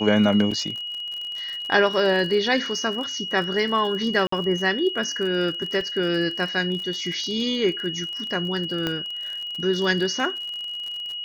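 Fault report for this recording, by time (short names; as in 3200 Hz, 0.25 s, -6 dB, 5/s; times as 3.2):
crackle 42/s -30 dBFS
tone 2900 Hz -29 dBFS
0.51 gap 4.7 ms
4.27–4.32 gap 54 ms
5.81 gap 2.2 ms
8.87 pop -11 dBFS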